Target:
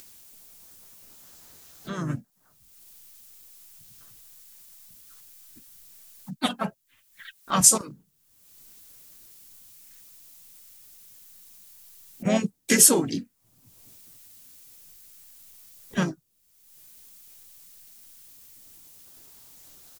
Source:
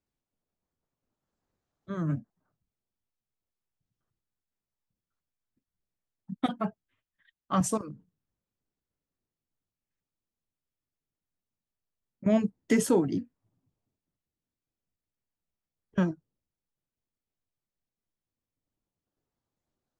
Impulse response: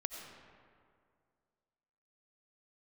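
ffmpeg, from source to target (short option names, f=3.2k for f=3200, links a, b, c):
-filter_complex "[0:a]crystalizer=i=9:c=0,acompressor=mode=upward:threshold=-31dB:ratio=2.5,asplit=3[a][b][c];[b]asetrate=37084,aresample=44100,atempo=1.18921,volume=-7dB[d];[c]asetrate=52444,aresample=44100,atempo=0.840896,volume=-11dB[e];[a][d][e]amix=inputs=3:normalize=0,volume=-1.5dB"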